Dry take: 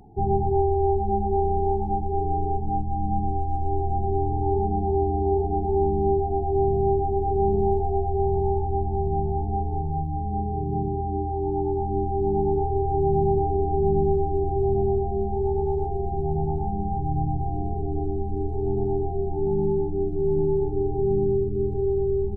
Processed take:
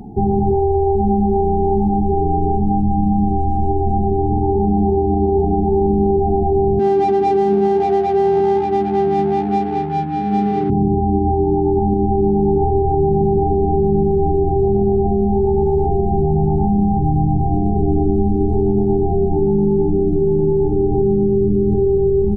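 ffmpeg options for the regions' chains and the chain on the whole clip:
-filter_complex "[0:a]asettb=1/sr,asplit=3[a][b][c];[a]atrim=end=6.794[d];[b]atrim=start=6.79:end=10.7,asetpts=PTS-STARTPTS,afade=t=in:d=0.004:c=qsin,afade=t=out:st=3.906:d=0.004:c=qsin,adynamicsmooth=sensitivity=7:basefreq=780,highpass=270[e];[c]atrim=start=10.696[f];[d][e]acrossfade=d=0.004:c1=hsin:c2=qsin[g];[g][f]acrossfade=d=0.004:c1=qsin:c2=hsin,equalizer=f=220:t=o:w=0.75:g=12.5,alimiter=level_in=18.5dB:limit=-1dB:release=50:level=0:latency=1,volume=-7.5dB"

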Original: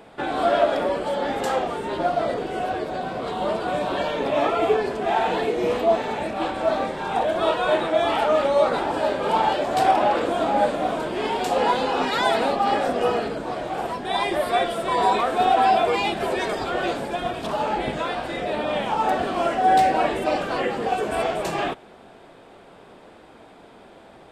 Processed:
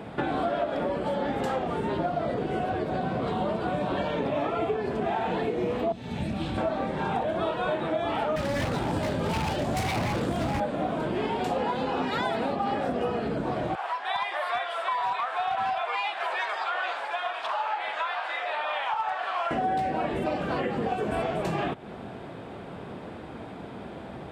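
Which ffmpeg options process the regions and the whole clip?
-filter_complex "[0:a]asettb=1/sr,asplit=3[a][b][c];[a]atrim=end=5.924[d];[b]atrim=start=5.92:end=6.58,asetpts=PTS-STARTPTS,afade=t=in:d=0.004:c=qsin,afade=t=out:st=0.656:d=0.004:c=qsin,bandreject=f=7.3k:w=25,acrossover=split=220|3000[e][f][g];[f]acompressor=threshold=-39dB:ratio=10:attack=3.2:release=140:knee=2.83:detection=peak[h];[e][h][g]amix=inputs=3:normalize=0[i];[c]atrim=start=6.576[j];[d][i]acrossfade=d=0.004:c1=hsin:c2=qsin[k];[k][j]acrossfade=d=0.004:c1=qsin:c2=hsin,asettb=1/sr,asplit=3[l][m][n];[l]atrim=end=8.364[o];[m]atrim=start=8.36:end=10.6,asetpts=PTS-STARTPTS,afade=t=in:d=0.004:c=qsin,afade=t=out:st=2.236:d=0.004:c=qsin,aeval=exprs='0.119*(abs(mod(val(0)/0.119+3,4)-2)-1)':c=same,bass=f=250:g=9,treble=f=4k:g=12[p];[n]atrim=start=10.596[q];[o][p]acrossfade=d=0.004:c1=hsin:c2=qsin[r];[r][q]acrossfade=d=0.004:c1=qsin:c2=hsin,asettb=1/sr,asplit=3[s][t][u];[s]atrim=end=13.754[v];[t]atrim=start=13.75:end=19.51,asetpts=PTS-STARTPTS,afade=t=in:d=0.004:c=qsin,afade=t=out:st=5.756:d=0.004:c=qsin,highpass=f=880:w=0.5412,highpass=f=880:w=1.3066,aemphasis=mode=reproduction:type=bsi,asoftclip=type=hard:threshold=-18dB[w];[u]atrim=start=19.506[x];[v][w]acrossfade=d=0.004:c1=hsin:c2=qsin[y];[y][x]acrossfade=d=0.004:c1=qsin:c2=hsin,highpass=74,bass=f=250:g=11,treble=f=4k:g=-7,acompressor=threshold=-31dB:ratio=6,volume=5dB"

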